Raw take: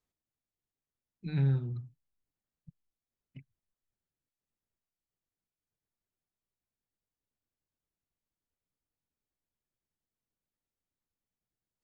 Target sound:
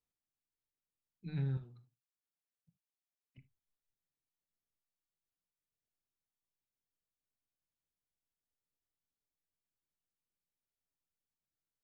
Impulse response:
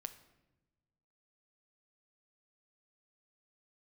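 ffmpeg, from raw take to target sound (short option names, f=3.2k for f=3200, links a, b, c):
-filter_complex "[0:a]asettb=1/sr,asplit=3[a][b][c];[a]atrim=end=1.574[d];[b]atrim=start=1.57:end=3.38,asetpts=PTS-STARTPTS,afade=t=in:d=0.004:c=qsin,afade=t=out:st=1.806:d=0.004:c=qsin,highpass=f=630:p=1[e];[c]atrim=start=3.376[f];[d][e]acrossfade=d=0.004:c1=hsin:c2=qsin[g];[g][f]acrossfade=d=0.004:c1=qsin:c2=hsin[h];[1:a]atrim=start_sample=2205,atrim=end_sample=3528[i];[h][i]afir=irnorm=-1:irlink=0,volume=-3.5dB"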